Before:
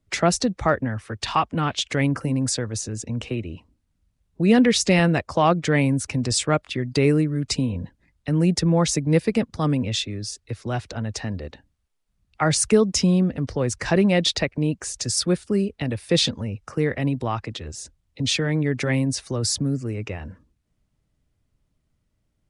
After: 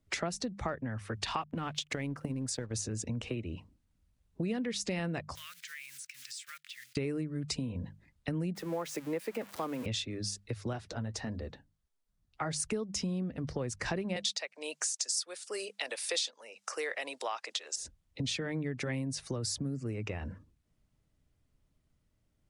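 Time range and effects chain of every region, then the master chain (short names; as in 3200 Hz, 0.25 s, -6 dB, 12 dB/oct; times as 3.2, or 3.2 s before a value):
1.41–2.71 backlash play -47.5 dBFS + transient shaper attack +10 dB, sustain -10 dB + compressor 3:1, threshold -24 dBFS
5.35–6.97 block floating point 5-bit + inverse Chebyshev high-pass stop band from 840 Hz + compressor 4:1, threshold -42 dBFS
8.55–9.86 switching spikes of -20 dBFS + three-band isolator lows -20 dB, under 310 Hz, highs -14 dB, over 2500 Hz
10.73–12.6 bell 2500 Hz -4.5 dB 0.56 oct + flange 1.6 Hz, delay 2.8 ms, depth 5.6 ms, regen -52%
14.16–17.76 HPF 520 Hz 24 dB/oct + bell 7100 Hz +12.5 dB 2.1 oct
whole clip: notches 50/100/150/200 Hz; compressor 6:1, threshold -30 dBFS; gain -2.5 dB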